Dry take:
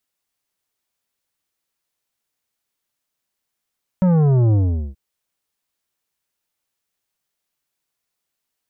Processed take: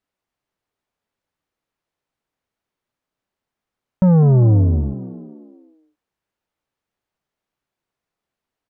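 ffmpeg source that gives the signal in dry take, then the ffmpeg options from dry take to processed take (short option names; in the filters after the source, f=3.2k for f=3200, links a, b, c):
-f lavfi -i "aevalsrc='0.224*clip((0.93-t)/0.42,0,1)*tanh(3.35*sin(2*PI*190*0.93/log(65/190)*(exp(log(65/190)*t/0.93)-1)))/tanh(3.35)':d=0.93:s=44100"
-filter_complex "[0:a]asplit=6[a][b][c][d][e][f];[b]adelay=201,afreqshift=47,volume=-15.5dB[g];[c]adelay=402,afreqshift=94,volume=-21.5dB[h];[d]adelay=603,afreqshift=141,volume=-27.5dB[i];[e]adelay=804,afreqshift=188,volume=-33.6dB[j];[f]adelay=1005,afreqshift=235,volume=-39.6dB[k];[a][g][h][i][j][k]amix=inputs=6:normalize=0,asplit=2[l][m];[m]alimiter=limit=-18dB:level=0:latency=1,volume=-2dB[n];[l][n]amix=inputs=2:normalize=0,lowpass=f=1.1k:p=1"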